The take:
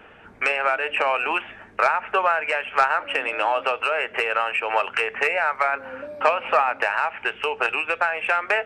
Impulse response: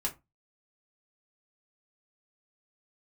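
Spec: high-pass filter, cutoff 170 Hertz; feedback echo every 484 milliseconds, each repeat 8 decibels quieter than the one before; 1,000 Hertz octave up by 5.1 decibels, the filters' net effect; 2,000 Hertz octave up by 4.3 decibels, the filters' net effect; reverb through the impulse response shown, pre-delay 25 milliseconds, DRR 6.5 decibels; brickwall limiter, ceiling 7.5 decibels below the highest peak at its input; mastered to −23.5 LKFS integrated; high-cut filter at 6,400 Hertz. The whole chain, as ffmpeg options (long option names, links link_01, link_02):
-filter_complex "[0:a]highpass=170,lowpass=6400,equalizer=frequency=1000:width_type=o:gain=5.5,equalizer=frequency=2000:width_type=o:gain=4,alimiter=limit=-8dB:level=0:latency=1,aecho=1:1:484|968|1452|1936|2420:0.398|0.159|0.0637|0.0255|0.0102,asplit=2[link_01][link_02];[1:a]atrim=start_sample=2205,adelay=25[link_03];[link_02][link_03]afir=irnorm=-1:irlink=0,volume=-10dB[link_04];[link_01][link_04]amix=inputs=2:normalize=0,volume=-5dB"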